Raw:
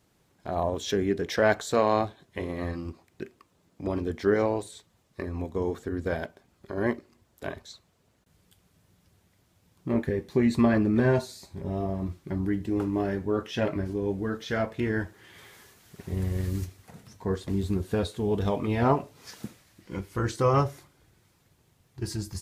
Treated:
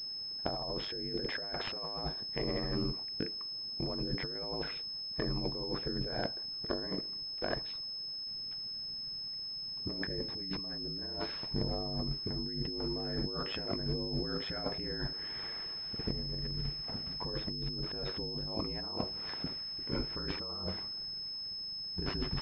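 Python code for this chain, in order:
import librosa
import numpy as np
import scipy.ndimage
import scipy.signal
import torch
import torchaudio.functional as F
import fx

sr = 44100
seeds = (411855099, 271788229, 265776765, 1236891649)

y = x * np.sin(2.0 * np.pi * 50.0 * np.arange(len(x)) / sr)
y = fx.over_compress(y, sr, threshold_db=-39.0, ratio=-1.0)
y = fx.pwm(y, sr, carrier_hz=5200.0)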